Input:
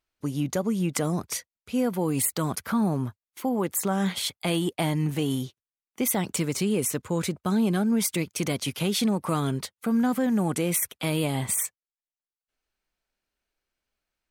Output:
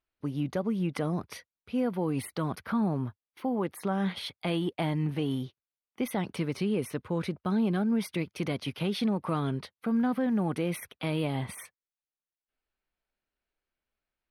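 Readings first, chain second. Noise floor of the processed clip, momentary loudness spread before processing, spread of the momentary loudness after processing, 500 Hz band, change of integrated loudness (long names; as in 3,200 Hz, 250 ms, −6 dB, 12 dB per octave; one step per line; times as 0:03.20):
below −85 dBFS, 6 LU, 8 LU, −3.5 dB, −4.5 dB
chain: moving average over 6 samples
level −3.5 dB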